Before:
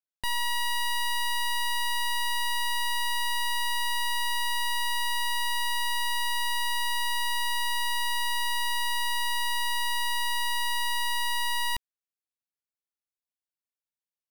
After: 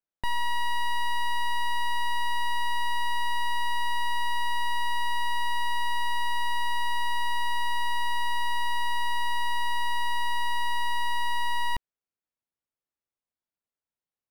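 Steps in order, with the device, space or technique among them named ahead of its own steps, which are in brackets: through cloth (treble shelf 2.7 kHz -17 dB); trim +5 dB

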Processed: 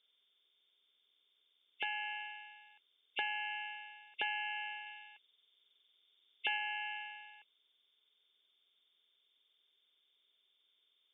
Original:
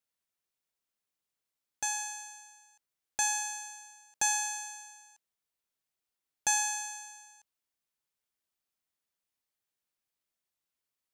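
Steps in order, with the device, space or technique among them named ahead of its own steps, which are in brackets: hearing aid with frequency lowering (knee-point frequency compression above 2 kHz 4:1; compression 4:1, threshold -37 dBFS, peak gain reduction 11 dB; cabinet simulation 280–5300 Hz, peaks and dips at 410 Hz +9 dB, 770 Hz -4 dB, 1.5 kHz +3 dB, 2.6 kHz -9 dB, 3.9 kHz +9 dB); 4.86–6.57 s: treble shelf 3.5 kHz +6 dB; trim +4.5 dB

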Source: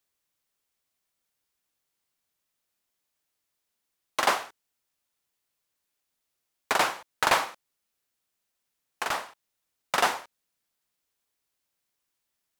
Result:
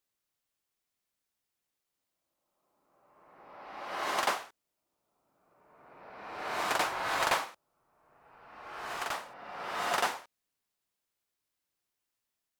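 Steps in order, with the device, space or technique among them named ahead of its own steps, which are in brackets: reverse reverb (reverse; reverberation RT60 1.9 s, pre-delay 88 ms, DRR 1 dB; reverse); trim -6.5 dB

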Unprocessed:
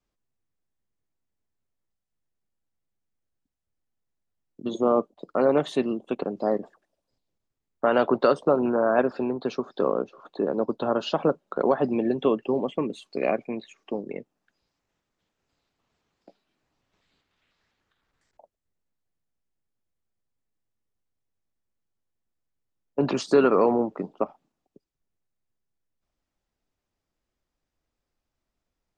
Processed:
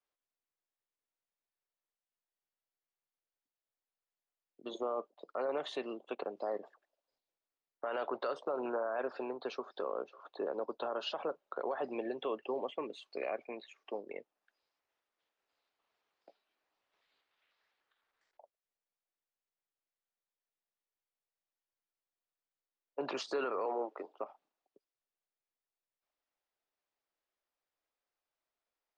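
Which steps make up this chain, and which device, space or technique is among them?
23.65–24.19 s: high-pass 280 Hz 24 dB/octave; DJ mixer with the lows and highs turned down (three-band isolator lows -22 dB, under 410 Hz, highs -16 dB, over 5.6 kHz; peak limiter -22 dBFS, peak gain reduction 11 dB); trim -5 dB

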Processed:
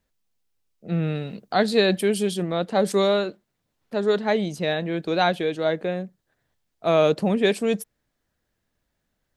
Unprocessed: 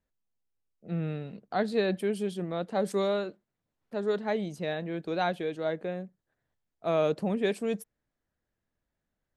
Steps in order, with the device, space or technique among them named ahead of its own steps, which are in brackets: presence and air boost (peaking EQ 4.1 kHz +4 dB 1.7 oct; treble shelf 10 kHz +3 dB); 1.15–2.43 s: treble shelf 4.7 kHz +7 dB; trim +7.5 dB

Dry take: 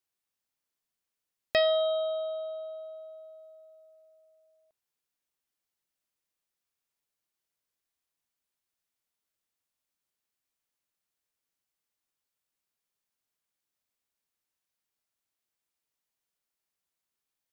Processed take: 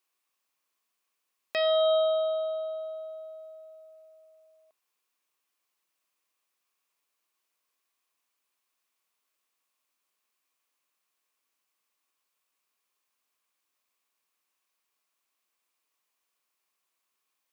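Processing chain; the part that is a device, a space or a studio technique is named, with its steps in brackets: laptop speaker (high-pass 270 Hz; peaking EQ 1.1 kHz +10 dB 0.25 oct; peaking EQ 2.5 kHz +5 dB 0.39 oct; peak limiter -23 dBFS, peak gain reduction 12.5 dB); trim +5.5 dB

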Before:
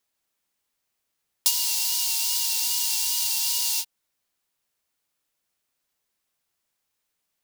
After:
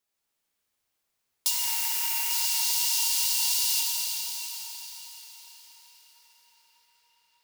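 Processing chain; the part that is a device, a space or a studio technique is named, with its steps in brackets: 1.51–2.31 s: graphic EQ 500/1000/2000/4000/8000 Hz +7/+6/+10/-12/-4 dB; feedback echo behind a low-pass 591 ms, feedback 79%, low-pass 1.6 kHz, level -20 dB; cathedral (reverberation RT60 5.7 s, pre-delay 12 ms, DRR -4.5 dB); trim -5.5 dB

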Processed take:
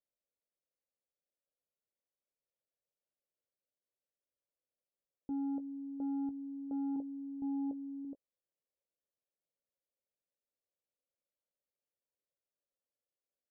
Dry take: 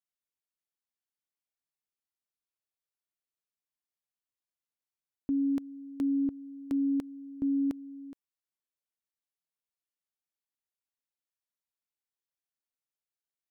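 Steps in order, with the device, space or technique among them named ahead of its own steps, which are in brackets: overdriven synthesiser ladder filter (saturation -36 dBFS, distortion -8 dB; four-pole ladder low-pass 600 Hz, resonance 70%); 6.96–8.05 s: low-pass 1 kHz 24 dB/octave; doubling 18 ms -12 dB; trim +9 dB

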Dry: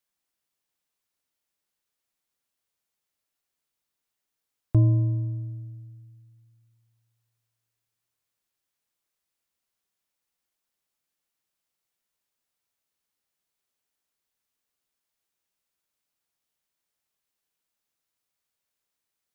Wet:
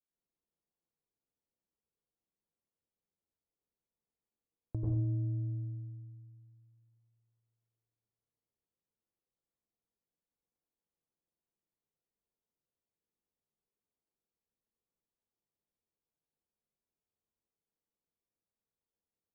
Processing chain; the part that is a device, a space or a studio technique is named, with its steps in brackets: television next door (compression 3:1, threshold -31 dBFS, peak gain reduction 12 dB; low-pass 570 Hz 12 dB/octave; reverberation RT60 0.60 s, pre-delay 85 ms, DRR -5.5 dB); trim -7.5 dB

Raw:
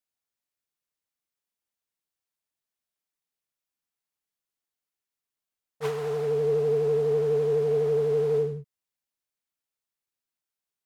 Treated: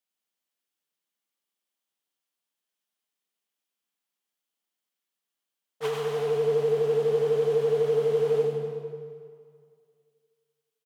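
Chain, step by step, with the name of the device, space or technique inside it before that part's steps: PA in a hall (high-pass 170 Hz 24 dB/octave; peaking EQ 3.1 kHz +5.5 dB 0.33 oct; delay 96 ms -5 dB; reverberation RT60 2.2 s, pre-delay 77 ms, DRR 4.5 dB)

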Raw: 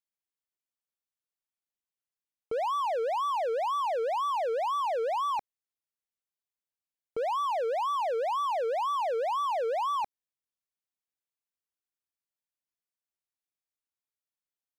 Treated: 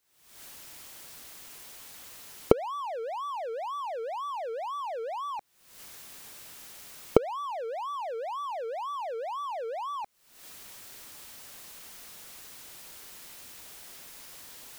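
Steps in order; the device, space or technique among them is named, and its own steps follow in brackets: cheap recorder with automatic gain (white noise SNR 39 dB; recorder AGC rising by 73 dB/s); trim -5.5 dB

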